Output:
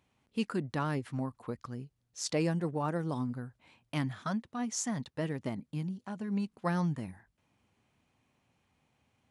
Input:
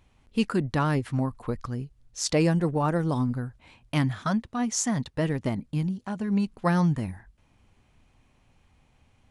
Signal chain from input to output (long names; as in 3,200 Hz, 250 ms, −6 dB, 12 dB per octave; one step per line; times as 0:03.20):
high-pass filter 120 Hz 12 dB per octave
level −7.5 dB